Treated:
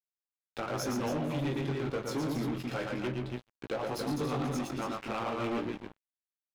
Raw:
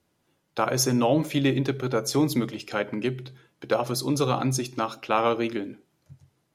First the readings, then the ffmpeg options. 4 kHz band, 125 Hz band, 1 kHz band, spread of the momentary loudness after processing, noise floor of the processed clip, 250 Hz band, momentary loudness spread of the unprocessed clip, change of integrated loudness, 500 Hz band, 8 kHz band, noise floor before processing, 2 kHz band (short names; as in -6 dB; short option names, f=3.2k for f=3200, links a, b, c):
-10.5 dB, -7.5 dB, -9.0 dB, 8 LU, under -85 dBFS, -7.5 dB, 8 LU, -9.0 dB, -9.0 dB, -14.0 dB, -72 dBFS, -7.0 dB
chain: -filter_complex "[0:a]asplit=2[a][b];[b]acompressor=threshold=-34dB:ratio=8,volume=2.5dB[c];[a][c]amix=inputs=2:normalize=0,flanger=delay=9.3:depth=8.3:regen=69:speed=1.3:shape=sinusoidal,aecho=1:1:116.6|279.9:0.631|0.447,flanger=delay=16:depth=4.4:speed=0.33,aeval=exprs='sgn(val(0))*max(abs(val(0))-0.0112,0)':c=same,bass=f=250:g=4,treble=f=4k:g=-8,alimiter=limit=-21dB:level=0:latency=1:release=398,asoftclip=type=tanh:threshold=-33dB,volume=5dB"